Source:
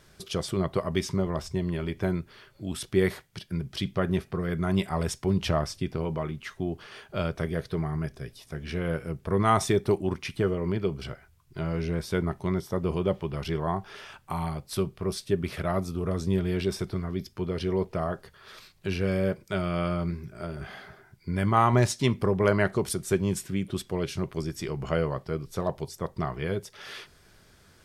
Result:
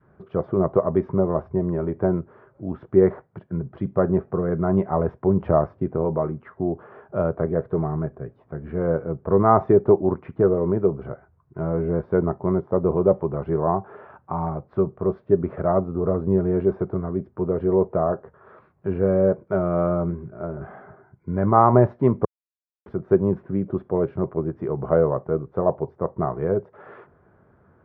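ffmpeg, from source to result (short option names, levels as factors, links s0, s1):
-filter_complex "[0:a]asplit=3[s0][s1][s2];[s0]atrim=end=22.25,asetpts=PTS-STARTPTS,afade=t=out:st=22.246:d=0.004:c=hsin[s3];[s1]atrim=start=22.25:end=22.86,asetpts=PTS-STARTPTS,volume=0[s4];[s2]atrim=start=22.86,asetpts=PTS-STARTPTS,afade=t=in:d=0.004:c=hsin[s5];[s3][s4][s5]concat=n=3:v=0:a=1,lowpass=f=1300:w=0.5412,lowpass=f=1300:w=1.3066,adynamicequalizer=threshold=0.0112:dfrequency=530:dqfactor=0.86:tfrequency=530:tqfactor=0.86:attack=5:release=100:ratio=0.375:range=3.5:mode=boostabove:tftype=bell,highpass=80,volume=1.5"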